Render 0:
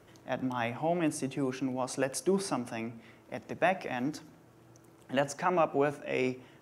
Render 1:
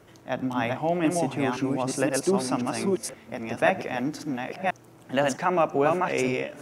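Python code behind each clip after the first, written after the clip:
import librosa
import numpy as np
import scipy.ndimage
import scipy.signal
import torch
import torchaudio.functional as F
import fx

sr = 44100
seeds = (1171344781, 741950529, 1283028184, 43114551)

y = fx.reverse_delay(x, sr, ms=523, wet_db=-2)
y = y * librosa.db_to_amplitude(4.5)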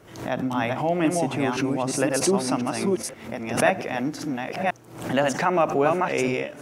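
y = fx.pre_swell(x, sr, db_per_s=94.0)
y = y * librosa.db_to_amplitude(1.5)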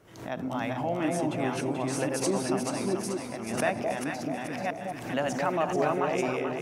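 y = fx.echo_alternate(x, sr, ms=217, hz=850.0, feedback_pct=71, wet_db=-2.5)
y = y * librosa.db_to_amplitude(-7.5)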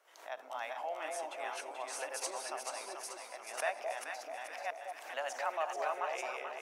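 y = scipy.signal.sosfilt(scipy.signal.butter(4, 610.0, 'highpass', fs=sr, output='sos'), x)
y = y * librosa.db_to_amplitude(-6.0)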